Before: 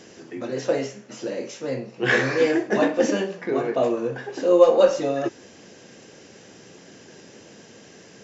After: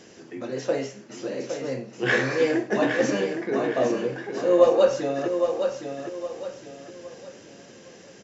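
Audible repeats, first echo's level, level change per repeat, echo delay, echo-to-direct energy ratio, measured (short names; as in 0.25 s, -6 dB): 4, -7.0 dB, -9.0 dB, 0.813 s, -6.5 dB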